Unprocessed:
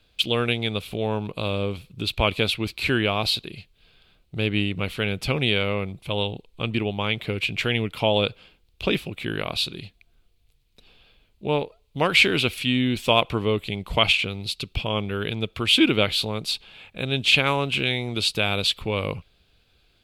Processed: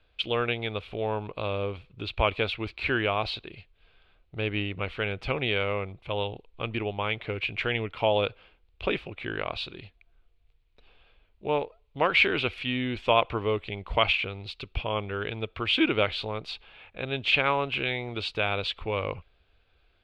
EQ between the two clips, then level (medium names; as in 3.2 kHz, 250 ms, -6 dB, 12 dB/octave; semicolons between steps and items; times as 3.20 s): low-pass 2.2 kHz 12 dB/octave; peaking EQ 180 Hz -11 dB 1.7 oct; 0.0 dB